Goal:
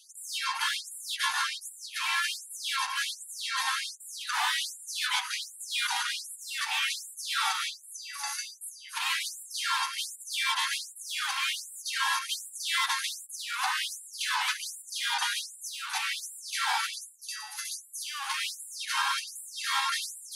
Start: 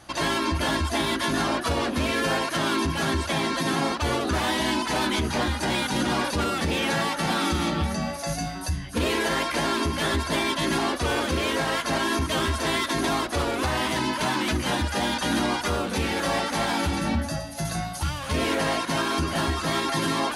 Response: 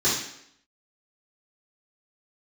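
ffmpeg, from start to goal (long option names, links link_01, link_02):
-af "afftfilt=real='re*gte(b*sr/1024,720*pow(7300/720,0.5+0.5*sin(2*PI*1.3*pts/sr)))':imag='im*gte(b*sr/1024,720*pow(7300/720,0.5+0.5*sin(2*PI*1.3*pts/sr)))':win_size=1024:overlap=0.75"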